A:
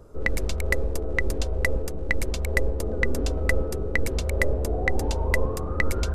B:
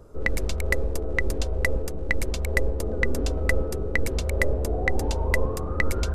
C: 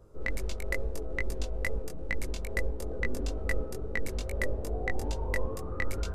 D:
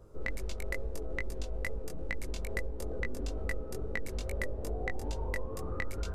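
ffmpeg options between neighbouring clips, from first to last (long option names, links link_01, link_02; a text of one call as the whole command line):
ffmpeg -i in.wav -af anull out.wav
ffmpeg -i in.wav -af "flanger=delay=18:depth=3.7:speed=2.3,volume=-5dB" out.wav
ffmpeg -i in.wav -af "acompressor=threshold=-32dB:ratio=4,volume=1dB" out.wav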